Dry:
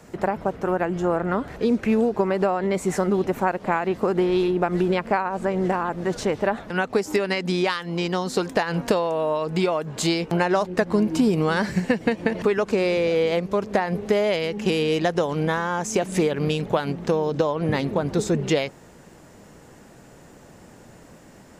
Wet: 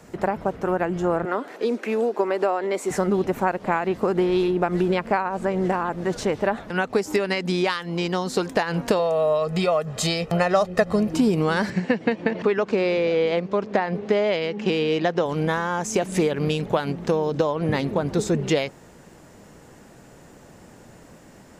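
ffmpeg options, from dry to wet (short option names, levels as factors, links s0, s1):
-filter_complex "[0:a]asettb=1/sr,asplit=3[s0][s1][s2];[s0]atrim=end=1.254[s3];[s1]atrim=start=1.25:end=2.91,asetpts=PTS-STARTPTS,afade=t=in:d=0.004:c=qsin,afade=t=out:st=1.656:d=0.004:c=qsin,highpass=f=280:w=0.5412,highpass=f=280:w=1.3066[s4];[s2]atrim=start=2.906[s5];[s3][s4]acrossfade=d=0.004:c1=hsin:c2=qsin[s6];[s6][s5]acrossfade=d=0.004:c1=qsin:c2=hsin,asettb=1/sr,asplit=3[s7][s8][s9];[s7]atrim=end=8.994[s10];[s8]atrim=start=8.99:end=11.14,asetpts=PTS-STARTPTS,afade=t=in:d=0.004:c=qsin,afade=t=out:st=2.146:d=0.004:c=qsin,aecho=1:1:1.6:0.65,atrim=end_sample=94815[s11];[s9]atrim=start=11.136[s12];[s10][s11]acrossfade=d=0.004:c1=hsin:c2=qsin[s13];[s13][s12]acrossfade=d=0.004:c1=qsin:c2=hsin,asettb=1/sr,asplit=3[s14][s15][s16];[s14]atrim=end=11.704[s17];[s15]atrim=start=11.7:end=15.26,asetpts=PTS-STARTPTS,afade=t=in:d=0.004:c=qsin,afade=t=out:st=3.556:d=0.004:c=qsin,highpass=140,lowpass=4600[s18];[s16]atrim=start=15.256[s19];[s17][s18]acrossfade=d=0.004:c1=hsin:c2=qsin[s20];[s20][s19]acrossfade=d=0.004:c1=qsin:c2=hsin"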